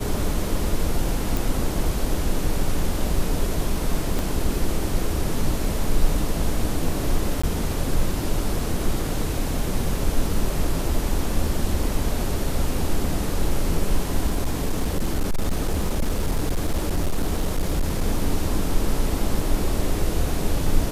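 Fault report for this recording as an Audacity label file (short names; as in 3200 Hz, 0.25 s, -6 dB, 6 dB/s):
1.370000	1.370000	pop
4.190000	4.190000	pop
7.420000	7.430000	gap 15 ms
14.270000	18.040000	clipped -17 dBFS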